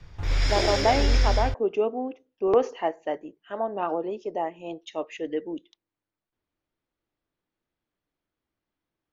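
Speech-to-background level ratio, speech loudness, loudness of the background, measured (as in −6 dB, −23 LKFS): −2.5 dB, −28.5 LKFS, −26.0 LKFS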